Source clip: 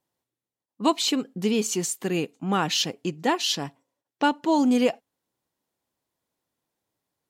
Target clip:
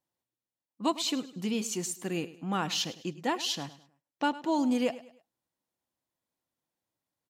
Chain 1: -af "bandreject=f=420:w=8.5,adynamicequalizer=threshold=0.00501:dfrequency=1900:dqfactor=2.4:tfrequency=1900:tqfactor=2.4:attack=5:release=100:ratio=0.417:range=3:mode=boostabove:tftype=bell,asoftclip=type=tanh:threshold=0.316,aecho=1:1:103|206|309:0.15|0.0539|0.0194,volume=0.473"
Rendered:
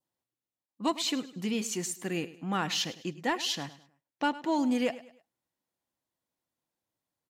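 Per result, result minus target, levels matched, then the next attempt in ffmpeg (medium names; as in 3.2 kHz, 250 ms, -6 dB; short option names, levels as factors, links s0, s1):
saturation: distortion +15 dB; 2 kHz band +2.5 dB
-af "bandreject=f=420:w=8.5,adynamicequalizer=threshold=0.00501:dfrequency=1900:dqfactor=2.4:tfrequency=1900:tqfactor=2.4:attack=5:release=100:ratio=0.417:range=3:mode=boostabove:tftype=bell,asoftclip=type=tanh:threshold=0.75,aecho=1:1:103|206|309:0.15|0.0539|0.0194,volume=0.473"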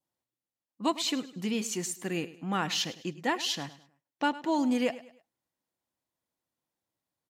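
2 kHz band +2.5 dB
-af "bandreject=f=420:w=8.5,asoftclip=type=tanh:threshold=0.75,aecho=1:1:103|206|309:0.15|0.0539|0.0194,volume=0.473"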